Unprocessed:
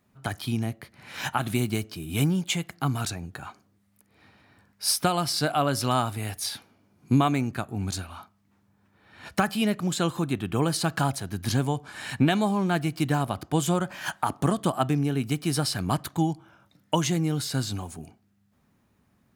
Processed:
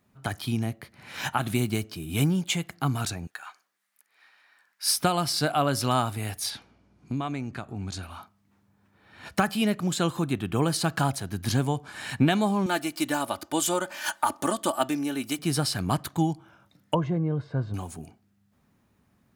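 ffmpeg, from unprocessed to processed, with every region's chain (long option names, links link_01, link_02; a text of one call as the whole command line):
ffmpeg -i in.wav -filter_complex "[0:a]asettb=1/sr,asplit=3[link_01][link_02][link_03];[link_01]atrim=end=3.274[link_04];[link_02]atrim=start=3.27:end=4.93,asetpts=PTS-STARTPTS,afade=type=in:duration=0.004:curve=qsin,afade=type=out:start_time=1.656:duration=0.004:curve=qsin,highpass=1100,equalizer=frequency=1700:width_type=o:width=0.4:gain=4,asoftclip=type=hard:threshold=-13.5dB[link_05];[link_03]atrim=start=4.926[link_06];[link_04][link_05]acrossfade=duration=0.004:curve1=hsin:curve2=qsin[link_07];[link_07][link_06]acrossfade=duration=0.004:curve1=qsin:curve2=hsin,asettb=1/sr,asplit=3[link_08][link_09][link_10];[link_08]atrim=end=6.504[link_11];[link_09]atrim=start=6.5:end=8.03,asetpts=PTS-STARTPTS,afade=type=in:duration=0.004:curve=qsin,afade=type=out:start_time=1.526:duration=0.004:curve=qsin,lowpass=7100,acompressor=threshold=-33dB:ratio=2:attack=3.2:release=140:knee=1:detection=peak,aeval=exprs='val(0)+0.000501*(sin(2*PI*60*n/s)+sin(2*PI*2*60*n/s)/2+sin(2*PI*3*60*n/s)/3+sin(2*PI*4*60*n/s)/4+sin(2*PI*5*60*n/s)/5)':channel_layout=same[link_12];[link_10]atrim=start=8.026[link_13];[link_11][link_12]acrossfade=duration=0.004:curve1=hsin:curve2=qsin[link_14];[link_14][link_13]acrossfade=duration=0.004:curve1=qsin:curve2=hsin,asettb=1/sr,asplit=3[link_15][link_16][link_17];[link_15]atrim=end=12.664[link_18];[link_16]atrim=start=12.66:end=15.39,asetpts=PTS-STARTPTS,afade=type=in:duration=0.004:curve=qsin,afade=type=out:start_time=2.726:duration=0.004:curve=qsin,bass=frequency=250:gain=-12,treble=frequency=4000:gain=5,aecho=1:1:3.4:0.56,atrim=end_sample=120393[link_19];[link_17]atrim=start=15.386[link_20];[link_18][link_19]acrossfade=duration=0.004:curve1=hsin:curve2=qsin[link_21];[link_21][link_20]acrossfade=duration=0.004:curve1=qsin:curve2=hsin,asettb=1/sr,asplit=3[link_22][link_23][link_24];[link_22]atrim=end=16.944[link_25];[link_23]atrim=start=16.94:end=17.74,asetpts=PTS-STARTPTS,afade=type=in:duration=0.004:curve=qsin,afade=type=out:start_time=0.796:duration=0.004:curve=qsin,lowpass=1000,aecho=1:1:1.9:0.46,atrim=end_sample=35280[link_26];[link_24]atrim=start=17.736[link_27];[link_25][link_26]acrossfade=duration=0.004:curve1=hsin:curve2=qsin[link_28];[link_28][link_27]acrossfade=duration=0.004:curve1=qsin:curve2=hsin" out.wav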